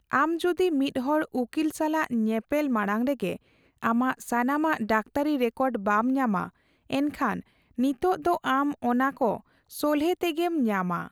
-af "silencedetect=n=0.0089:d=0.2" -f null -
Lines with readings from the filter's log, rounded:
silence_start: 3.36
silence_end: 3.83 | silence_duration: 0.46
silence_start: 6.49
silence_end: 6.90 | silence_duration: 0.42
silence_start: 7.40
silence_end: 7.78 | silence_duration: 0.38
silence_start: 9.39
silence_end: 9.72 | silence_duration: 0.32